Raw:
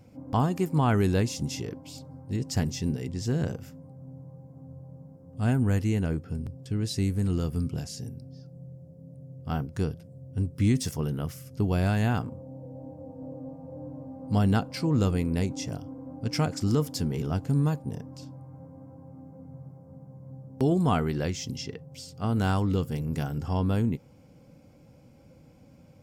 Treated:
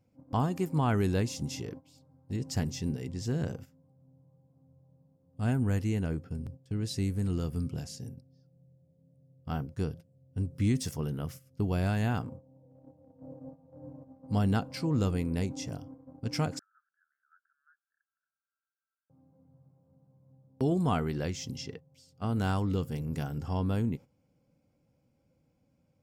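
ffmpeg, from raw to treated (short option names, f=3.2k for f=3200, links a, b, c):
-filter_complex "[0:a]asettb=1/sr,asplit=3[a][b][c];[a]atrim=end=16.594[d];[b]atrim=start=16.59:end=19.1,asetpts=PTS-STARTPTS,afade=t=in:d=0.004:c=qsin,afade=t=out:st=2.506:d=0.004:c=qsin,asuperpass=centerf=1500:order=8:qfactor=3.8[e];[c]atrim=start=19.096[f];[d][e]acrossfade=d=0.004:c1=hsin:c2=qsin[g];[g][f]acrossfade=d=0.004:c1=qsin:c2=hsin,agate=range=-13dB:threshold=-39dB:ratio=16:detection=peak,volume=-4dB"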